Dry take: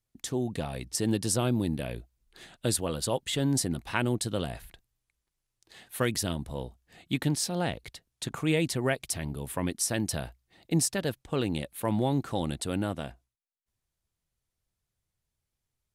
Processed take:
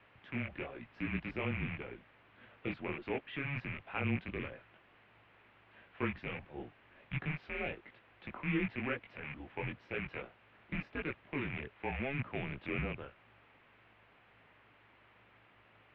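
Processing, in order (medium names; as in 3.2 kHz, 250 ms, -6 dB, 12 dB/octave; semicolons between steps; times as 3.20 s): rattle on loud lows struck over -33 dBFS, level -20 dBFS; hum 50 Hz, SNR 21 dB; chorus voices 4, 0.89 Hz, delay 20 ms, depth 4.3 ms; added noise white -51 dBFS; mistuned SSB -140 Hz 240–2800 Hz; trim -4.5 dB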